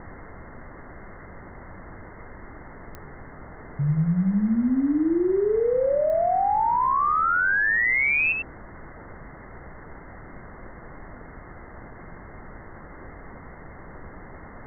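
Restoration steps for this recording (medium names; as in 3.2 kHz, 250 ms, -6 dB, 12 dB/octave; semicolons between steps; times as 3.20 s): de-click; noise print and reduce 27 dB; inverse comb 96 ms -5.5 dB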